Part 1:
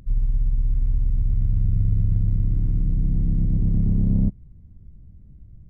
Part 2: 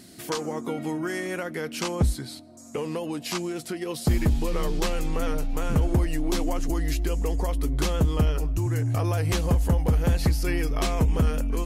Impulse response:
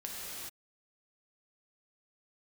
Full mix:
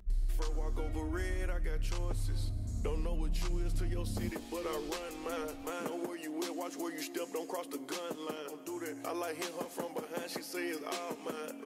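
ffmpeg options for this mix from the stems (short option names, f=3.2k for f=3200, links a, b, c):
-filter_complex "[0:a]equalizer=f=140:t=o:w=0.69:g=-13.5,bandreject=f=423.9:t=h:w=4,bandreject=f=847.8:t=h:w=4,bandreject=f=1.2717k:t=h:w=4,bandreject=f=1.6956k:t=h:w=4,bandreject=f=2.1195k:t=h:w=4,bandreject=f=2.5434k:t=h:w=4,bandreject=f=2.9673k:t=h:w=4,bandreject=f=3.3912k:t=h:w=4,bandreject=f=3.8151k:t=h:w=4,bandreject=f=4.239k:t=h:w=4,bandreject=f=4.6629k:t=h:w=4,bandreject=f=5.0868k:t=h:w=4,bandreject=f=5.5107k:t=h:w=4,bandreject=f=5.9346k:t=h:w=4,bandreject=f=6.3585k:t=h:w=4,bandreject=f=6.7824k:t=h:w=4,bandreject=f=7.2063k:t=h:w=4,bandreject=f=7.6302k:t=h:w=4,bandreject=f=8.0541k:t=h:w=4,bandreject=f=8.478k:t=h:w=4,bandreject=f=8.9019k:t=h:w=4,bandreject=f=9.3258k:t=h:w=4,bandreject=f=9.7497k:t=h:w=4,bandreject=f=10.1736k:t=h:w=4,bandreject=f=10.5975k:t=h:w=4,bandreject=f=11.0214k:t=h:w=4,bandreject=f=11.4453k:t=h:w=4,asplit=2[a][b];[b]adelay=2.6,afreqshift=-0.62[c];[a][c]amix=inputs=2:normalize=1,volume=-5dB[d];[1:a]highpass=f=280:w=0.5412,highpass=f=280:w=1.3066,adelay=100,volume=-7dB,asplit=2[e][f];[f]volume=-16dB[g];[2:a]atrim=start_sample=2205[h];[g][h]afir=irnorm=-1:irlink=0[i];[d][e][i]amix=inputs=3:normalize=0,alimiter=level_in=1.5dB:limit=-24dB:level=0:latency=1:release=474,volume=-1.5dB"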